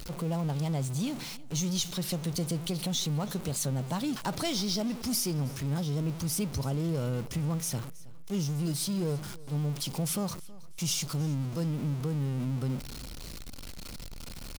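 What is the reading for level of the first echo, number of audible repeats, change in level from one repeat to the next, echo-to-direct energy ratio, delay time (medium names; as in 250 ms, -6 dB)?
-21.0 dB, 2, -8.5 dB, -20.5 dB, 322 ms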